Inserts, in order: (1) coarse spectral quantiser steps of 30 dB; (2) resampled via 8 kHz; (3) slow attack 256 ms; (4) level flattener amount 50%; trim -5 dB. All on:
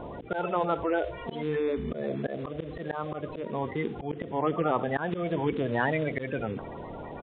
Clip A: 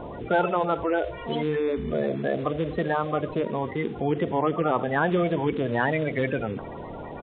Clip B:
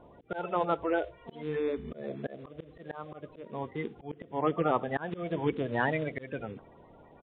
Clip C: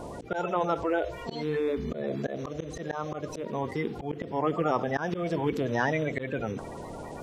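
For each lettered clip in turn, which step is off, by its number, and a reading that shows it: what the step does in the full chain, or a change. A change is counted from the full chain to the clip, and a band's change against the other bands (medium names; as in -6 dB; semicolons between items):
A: 3, crest factor change -2.0 dB; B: 4, crest factor change +1.5 dB; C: 2, 4 kHz band +1.5 dB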